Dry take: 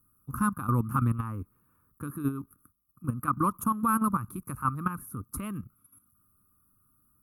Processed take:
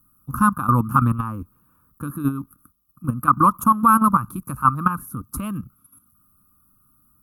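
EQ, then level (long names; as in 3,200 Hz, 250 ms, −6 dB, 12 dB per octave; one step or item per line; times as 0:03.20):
thirty-one-band graphic EQ 100 Hz −7 dB, 400 Hz −9 dB, 2,000 Hz −12 dB, 10,000 Hz −4 dB
dynamic equaliser 1,100 Hz, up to +5 dB, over −39 dBFS, Q 0.98
+8.5 dB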